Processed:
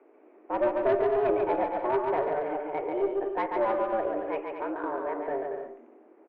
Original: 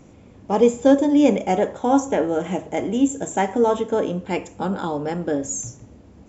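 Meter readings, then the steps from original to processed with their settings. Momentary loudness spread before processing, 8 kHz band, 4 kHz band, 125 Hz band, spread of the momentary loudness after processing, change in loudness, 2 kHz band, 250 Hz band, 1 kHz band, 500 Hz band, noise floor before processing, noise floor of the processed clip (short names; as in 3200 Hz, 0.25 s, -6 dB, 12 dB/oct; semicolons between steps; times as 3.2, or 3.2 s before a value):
10 LU, n/a, under -15 dB, -18.5 dB, 8 LU, -8.0 dB, -5.5 dB, -15.5 dB, -5.0 dB, -5.5 dB, -48 dBFS, -57 dBFS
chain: mistuned SSB +120 Hz 180–2200 Hz; tube stage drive 11 dB, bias 0.3; bouncing-ball echo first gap 0.14 s, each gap 0.65×, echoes 5; gain -7.5 dB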